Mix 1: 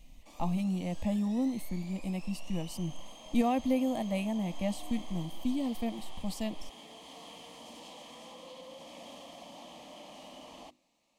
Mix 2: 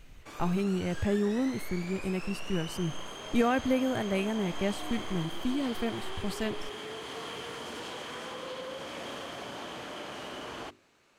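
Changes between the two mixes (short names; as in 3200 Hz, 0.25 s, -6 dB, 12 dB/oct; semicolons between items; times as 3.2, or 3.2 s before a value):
background +5.5 dB; master: remove fixed phaser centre 400 Hz, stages 6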